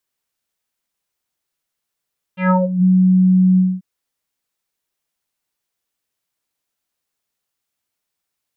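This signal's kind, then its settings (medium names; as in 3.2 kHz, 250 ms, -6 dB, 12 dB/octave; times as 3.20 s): synth note square F#3 24 dB/octave, low-pass 190 Hz, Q 4, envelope 4 oct, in 0.44 s, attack 129 ms, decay 0.18 s, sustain -10 dB, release 0.23 s, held 1.21 s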